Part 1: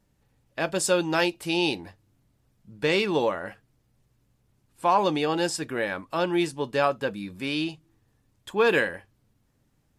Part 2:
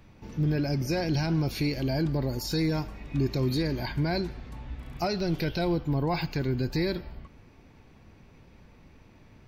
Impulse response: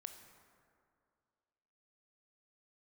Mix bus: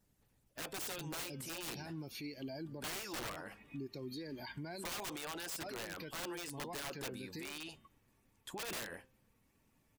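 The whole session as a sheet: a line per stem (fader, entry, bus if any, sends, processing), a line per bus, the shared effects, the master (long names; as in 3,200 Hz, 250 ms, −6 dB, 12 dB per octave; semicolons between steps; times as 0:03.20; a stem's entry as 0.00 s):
−2.5 dB, 0.00 s, no send, hum removal 259.6 Hz, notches 14; harmonic and percussive parts rebalanced harmonic −14 dB; high-shelf EQ 7,700 Hz +10 dB
−0.5 dB, 0.60 s, no send, spectral dynamics exaggerated over time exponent 1.5; high-pass filter 230 Hz 12 dB per octave; downward compressor 6 to 1, threshold −40 dBFS, peak gain reduction 13 dB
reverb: not used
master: wrap-around overflow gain 26.5 dB; brickwall limiter −36.5 dBFS, peak gain reduction 10 dB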